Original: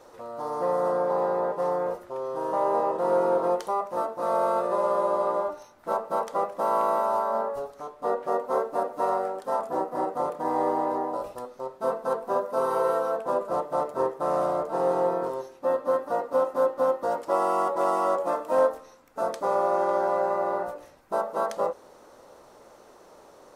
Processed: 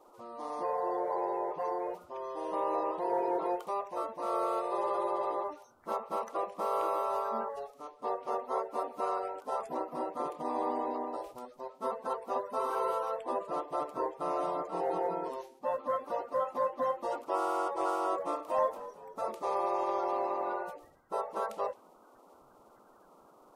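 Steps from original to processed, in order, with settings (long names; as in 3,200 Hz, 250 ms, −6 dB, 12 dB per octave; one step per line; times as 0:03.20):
spectral magnitudes quantised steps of 30 dB
dynamic equaliser 2,500 Hz, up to +6 dB, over −48 dBFS, Q 1.2
0:18.22–0:20.53: echo with shifted repeats 228 ms, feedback 56%, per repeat −43 Hz, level −16 dB
level −7.5 dB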